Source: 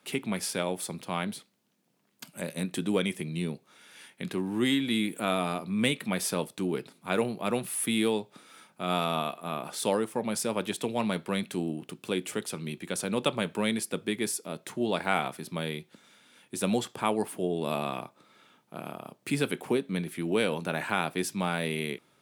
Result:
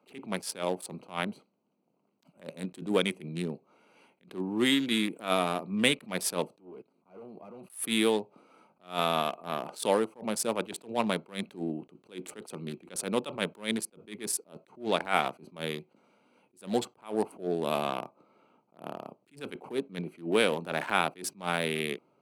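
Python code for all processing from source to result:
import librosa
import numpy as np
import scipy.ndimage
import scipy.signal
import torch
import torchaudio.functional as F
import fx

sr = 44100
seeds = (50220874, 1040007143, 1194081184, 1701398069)

y = fx.chain(x, sr, fx.highpass(hz=150.0, slope=12),
    fx.clip_hard(threshold_db=-28.5),
    fx.level_steps(step_db=23), at=(6.57, 7.7))
y = fx.wiener(y, sr, points=25)
y = fx.highpass(y, sr, hz=360.0, slope=6)
y = fx.attack_slew(y, sr, db_per_s=200.0)
y = y * 10.0 ** (4.5 / 20.0)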